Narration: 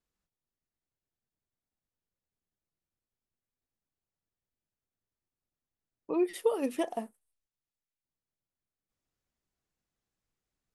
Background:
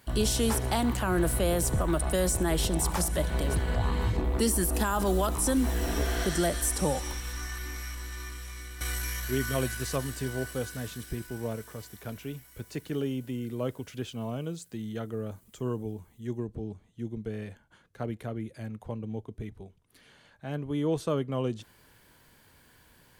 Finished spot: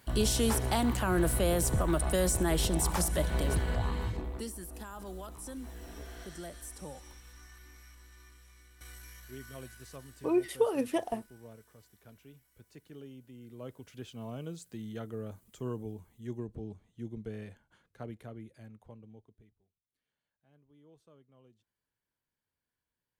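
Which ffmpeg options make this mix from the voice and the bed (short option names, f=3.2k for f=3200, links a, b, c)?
-filter_complex "[0:a]adelay=4150,volume=0.5dB[a];[1:a]volume=10.5dB,afade=t=out:st=3.55:d=0.98:silence=0.16788,afade=t=in:st=13.33:d=1.29:silence=0.251189,afade=t=out:st=17.26:d=2.33:silence=0.0446684[b];[a][b]amix=inputs=2:normalize=0"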